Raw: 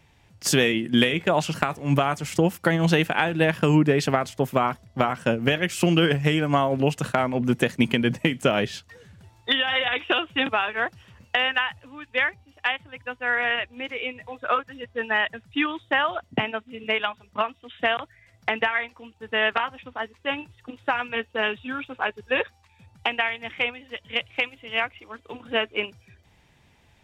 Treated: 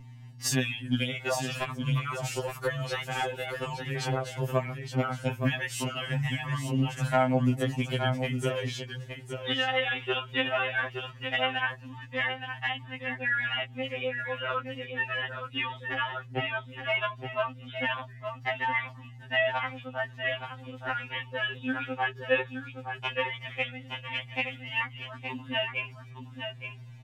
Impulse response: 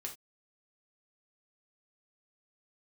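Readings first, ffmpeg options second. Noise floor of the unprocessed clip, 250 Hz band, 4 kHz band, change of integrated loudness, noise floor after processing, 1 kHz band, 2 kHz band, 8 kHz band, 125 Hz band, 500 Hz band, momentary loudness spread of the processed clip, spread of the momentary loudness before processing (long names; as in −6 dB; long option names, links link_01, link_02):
−60 dBFS, −9.0 dB, −6.0 dB, −6.5 dB, −47 dBFS, −6.5 dB, −5.5 dB, −4.0 dB, −3.5 dB, −7.0 dB, 10 LU, 11 LU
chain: -filter_complex "[0:a]acompressor=threshold=-24dB:ratio=4,flanger=delay=1:depth=1.4:regen=-34:speed=0.16:shape=sinusoidal,aeval=exprs='val(0)+0.00562*(sin(2*PI*60*n/s)+sin(2*PI*2*60*n/s)/2+sin(2*PI*3*60*n/s)/3+sin(2*PI*4*60*n/s)/4+sin(2*PI*5*60*n/s)/5)':channel_layout=same,asplit=2[link_01][link_02];[link_02]aecho=0:1:869:0.422[link_03];[link_01][link_03]amix=inputs=2:normalize=0,afftfilt=real='re*2.45*eq(mod(b,6),0)':imag='im*2.45*eq(mod(b,6),0)':win_size=2048:overlap=0.75,volume=4dB"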